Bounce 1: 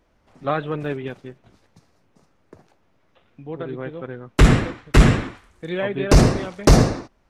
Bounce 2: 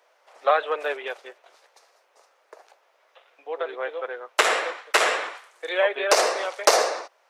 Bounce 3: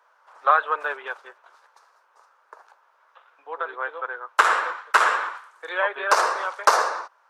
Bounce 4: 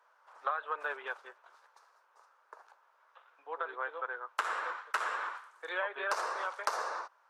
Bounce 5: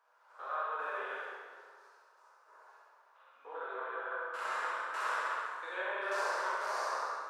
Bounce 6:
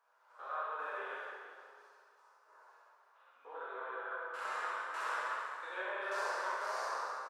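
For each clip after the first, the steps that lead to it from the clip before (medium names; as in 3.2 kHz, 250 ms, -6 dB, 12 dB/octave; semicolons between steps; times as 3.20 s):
in parallel at 0 dB: compression, threshold -21 dBFS, peak gain reduction 13.5 dB; on the sum: steep high-pass 490 Hz 36 dB/octave
high-order bell 1.2 kHz +12.5 dB 1.1 oct; trim -6 dB
compression 6:1, threshold -24 dBFS, peak gain reduction 12.5 dB; trim -6.5 dB
spectrogram pixelated in time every 100 ms; on a send: flutter echo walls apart 11.5 m, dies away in 0.75 s; on the sum: plate-style reverb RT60 1.7 s, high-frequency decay 0.75×, DRR -6.5 dB; trim -6.5 dB
flange 0.54 Hz, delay 6.9 ms, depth 3.7 ms, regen +75%; feedback delay 328 ms, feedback 36%, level -14 dB; trim +1.5 dB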